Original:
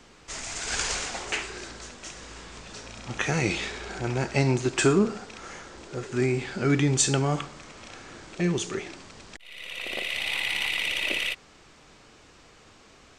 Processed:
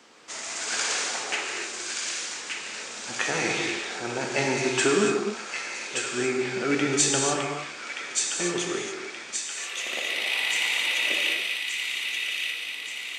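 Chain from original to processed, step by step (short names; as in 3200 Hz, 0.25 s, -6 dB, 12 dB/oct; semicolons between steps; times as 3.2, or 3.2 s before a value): Bessel high-pass 350 Hz, order 2; on a send: thin delay 1.176 s, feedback 56%, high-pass 1700 Hz, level -3.5 dB; on the sum: non-linear reverb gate 0.31 s flat, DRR 0.5 dB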